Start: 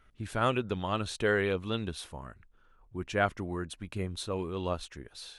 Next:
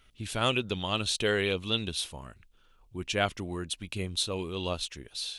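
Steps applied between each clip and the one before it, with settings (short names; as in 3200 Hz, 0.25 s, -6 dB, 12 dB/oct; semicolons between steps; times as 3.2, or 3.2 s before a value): resonant high shelf 2200 Hz +8.5 dB, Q 1.5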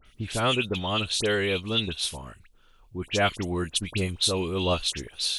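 vocal rider within 3 dB 0.5 s; dispersion highs, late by 58 ms, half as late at 2300 Hz; gain +5 dB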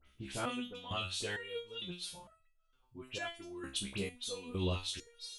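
stepped resonator 2.2 Hz 67–650 Hz; gain -2 dB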